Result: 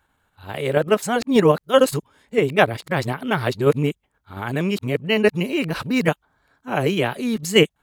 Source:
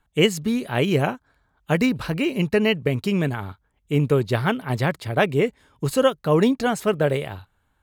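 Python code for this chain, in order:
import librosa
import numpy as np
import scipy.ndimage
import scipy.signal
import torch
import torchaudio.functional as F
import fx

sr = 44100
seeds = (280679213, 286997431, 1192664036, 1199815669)

p1 = x[::-1].copy()
p2 = fx.low_shelf(p1, sr, hz=100.0, db=-11.5)
p3 = fx.level_steps(p2, sr, step_db=18)
y = p2 + F.gain(torch.from_numpy(p3), -1.5).numpy()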